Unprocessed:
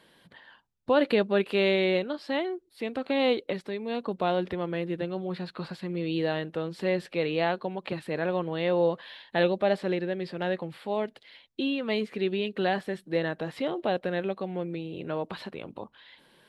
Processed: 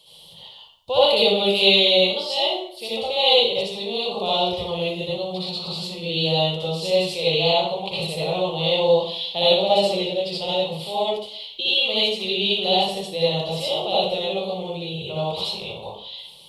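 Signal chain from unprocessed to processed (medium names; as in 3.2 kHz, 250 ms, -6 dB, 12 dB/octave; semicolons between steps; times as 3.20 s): resonant high shelf 2.4 kHz +9 dB, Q 3; static phaser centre 670 Hz, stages 4; reverberation RT60 0.60 s, pre-delay 54 ms, DRR -8.5 dB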